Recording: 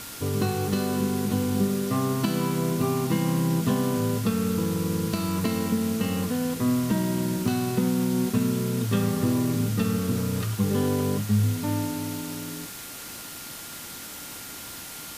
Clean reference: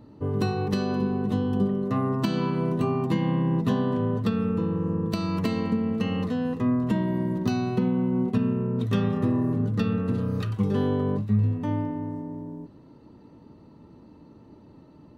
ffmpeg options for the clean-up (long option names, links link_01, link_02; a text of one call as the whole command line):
ffmpeg -i in.wav -af "bandreject=frequency=1400:width=30,afwtdn=0.013" out.wav